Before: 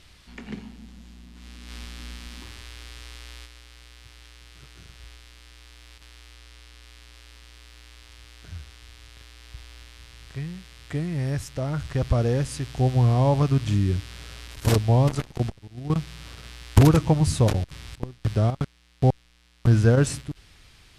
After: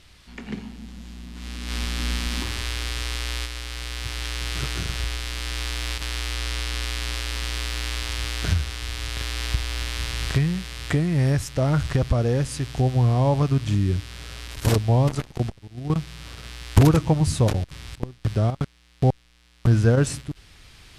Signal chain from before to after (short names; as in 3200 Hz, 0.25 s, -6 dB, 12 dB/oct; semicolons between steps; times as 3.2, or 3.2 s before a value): recorder AGC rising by 6.2 dB/s